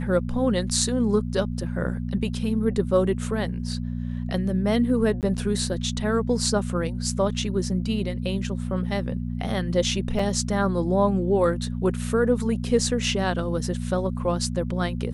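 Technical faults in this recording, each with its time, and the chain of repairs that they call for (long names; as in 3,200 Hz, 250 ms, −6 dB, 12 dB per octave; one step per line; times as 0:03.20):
mains hum 60 Hz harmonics 4 −29 dBFS
0:05.21–0:05.23: drop-out 18 ms
0:10.19: drop-out 3.5 ms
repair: hum removal 60 Hz, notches 4
repair the gap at 0:05.21, 18 ms
repair the gap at 0:10.19, 3.5 ms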